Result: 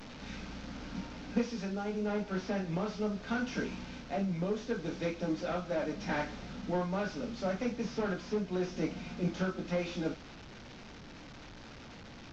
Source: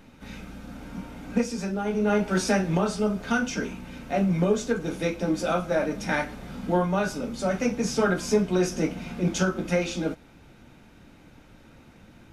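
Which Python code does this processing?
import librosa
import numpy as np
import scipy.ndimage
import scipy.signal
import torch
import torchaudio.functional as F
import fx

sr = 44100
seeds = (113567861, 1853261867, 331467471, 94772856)

y = fx.delta_mod(x, sr, bps=32000, step_db=-38.0)
y = fx.rider(y, sr, range_db=5, speed_s=0.5)
y = y * 10.0 ** (-8.5 / 20.0)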